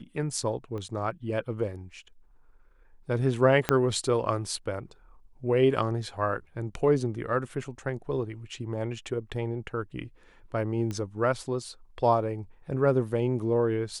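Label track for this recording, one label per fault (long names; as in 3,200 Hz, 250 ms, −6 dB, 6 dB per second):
0.780000	0.780000	click −27 dBFS
3.690000	3.690000	click −8 dBFS
10.910000	10.910000	click −21 dBFS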